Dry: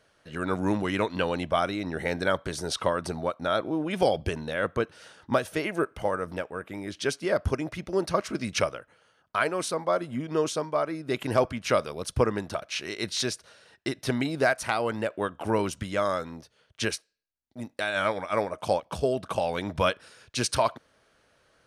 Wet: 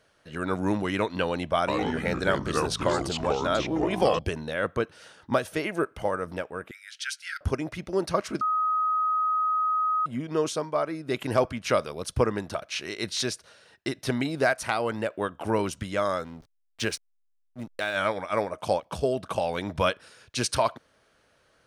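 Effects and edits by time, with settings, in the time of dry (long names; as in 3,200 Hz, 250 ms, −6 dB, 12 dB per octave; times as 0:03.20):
0:01.57–0:04.19: delay with pitch and tempo change per echo 105 ms, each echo −4 semitones, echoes 2
0:06.71–0:07.41: linear-phase brick-wall high-pass 1,300 Hz
0:08.41–0:10.06: beep over 1,260 Hz −22 dBFS
0:16.24–0:17.97: slack as between gear wheels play −40.5 dBFS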